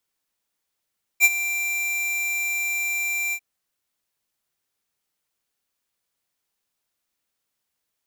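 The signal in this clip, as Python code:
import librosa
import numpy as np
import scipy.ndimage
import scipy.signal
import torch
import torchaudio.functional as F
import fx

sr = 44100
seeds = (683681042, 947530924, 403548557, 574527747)

y = fx.adsr_tone(sr, wave='square', hz=2360.0, attack_ms=46.0, decay_ms=39.0, sustain_db=-13.5, held_s=2.13, release_ms=64.0, level_db=-12.0)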